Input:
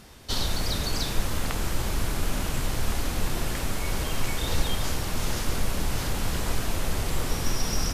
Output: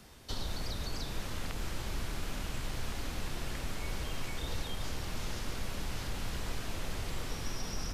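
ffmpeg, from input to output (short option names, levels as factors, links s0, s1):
-filter_complex "[0:a]acrossover=split=96|710|1500|6200[s0][s1][s2][s3][s4];[s0]acompressor=threshold=0.0447:ratio=4[s5];[s1]acompressor=threshold=0.0141:ratio=4[s6];[s2]acompressor=threshold=0.00501:ratio=4[s7];[s3]acompressor=threshold=0.0126:ratio=4[s8];[s4]acompressor=threshold=0.00355:ratio=4[s9];[s5][s6][s7][s8][s9]amix=inputs=5:normalize=0,volume=0.501"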